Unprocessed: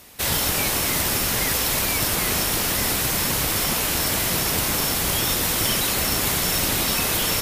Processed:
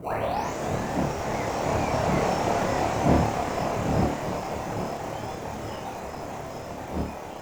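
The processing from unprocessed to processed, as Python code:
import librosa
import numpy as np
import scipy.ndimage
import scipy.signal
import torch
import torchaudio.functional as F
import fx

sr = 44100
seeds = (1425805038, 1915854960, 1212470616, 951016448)

p1 = fx.tape_start_head(x, sr, length_s=1.13)
p2 = fx.dmg_wind(p1, sr, seeds[0], corner_hz=210.0, level_db=-27.0)
p3 = fx.doppler_pass(p2, sr, speed_mps=19, closest_m=20.0, pass_at_s=2.44)
p4 = scipy.signal.sosfilt(scipy.signal.butter(8, 7100.0, 'lowpass', fs=sr, output='sos'), p3)
p5 = fx.dereverb_blind(p4, sr, rt60_s=0.51)
p6 = scipy.signal.sosfilt(scipy.signal.butter(2, 73.0, 'highpass', fs=sr, output='sos'), p5)
p7 = fx.peak_eq(p6, sr, hz=740.0, db=13.0, octaves=1.1)
p8 = fx.room_flutter(p7, sr, wall_m=4.7, rt60_s=0.39)
p9 = fx.sample_hold(p8, sr, seeds[1], rate_hz=1700.0, jitter_pct=0)
p10 = p8 + F.gain(torch.from_numpy(p9), -5.5).numpy()
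p11 = fx.peak_eq(p10, sr, hz=4100.0, db=-12.5, octaves=1.5)
p12 = fx.slew_limit(p11, sr, full_power_hz=200.0)
y = F.gain(torch.from_numpy(p12), -4.5).numpy()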